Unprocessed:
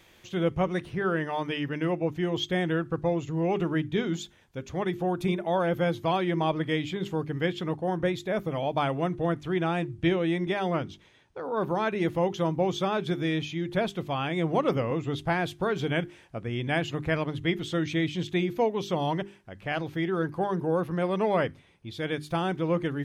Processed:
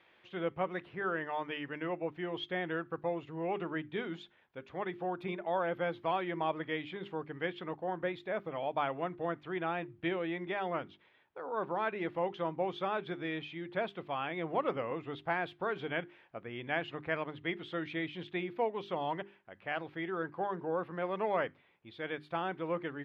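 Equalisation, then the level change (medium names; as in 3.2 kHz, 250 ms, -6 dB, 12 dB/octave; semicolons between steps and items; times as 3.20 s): high-pass 900 Hz 6 dB/octave; distance through air 440 m; 0.0 dB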